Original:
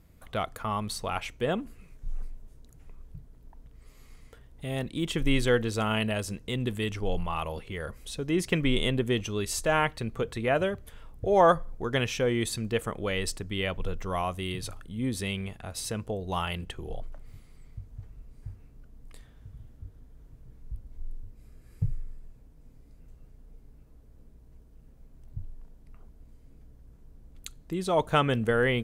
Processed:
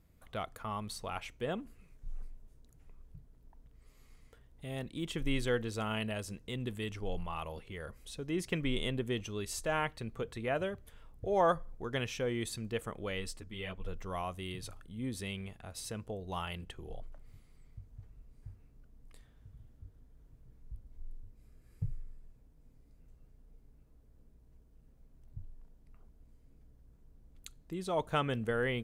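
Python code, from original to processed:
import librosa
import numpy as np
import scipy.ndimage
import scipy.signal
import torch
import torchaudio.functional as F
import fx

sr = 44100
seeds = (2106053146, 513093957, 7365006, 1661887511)

y = fx.ensemble(x, sr, at=(13.2, 13.86), fade=0.02)
y = F.gain(torch.from_numpy(y), -8.0).numpy()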